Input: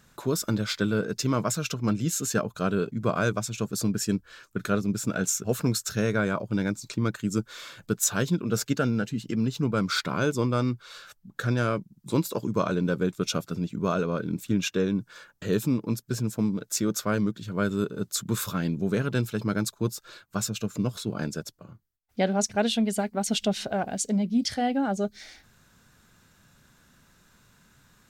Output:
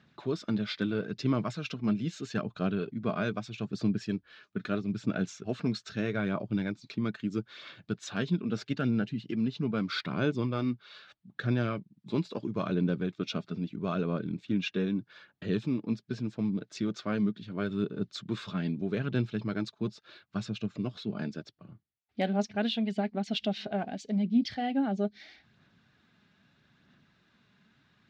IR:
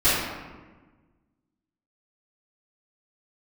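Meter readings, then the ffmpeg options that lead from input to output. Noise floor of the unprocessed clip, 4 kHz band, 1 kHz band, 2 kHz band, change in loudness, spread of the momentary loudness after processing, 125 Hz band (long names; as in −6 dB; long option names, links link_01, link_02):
−63 dBFS, −6.0 dB, −7.0 dB, −6.0 dB, −5.0 dB, 8 LU, −5.0 dB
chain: -af "highpass=120,equalizer=frequency=500:width_type=q:width=4:gain=-7,equalizer=frequency=980:width_type=q:width=4:gain=-6,equalizer=frequency=1400:width_type=q:width=4:gain=-5,lowpass=frequency=4100:width=0.5412,lowpass=frequency=4100:width=1.3066,asoftclip=type=hard:threshold=-14.5dB,aphaser=in_gain=1:out_gain=1:delay=4.9:decay=0.3:speed=0.78:type=sinusoidal,volume=-3.5dB"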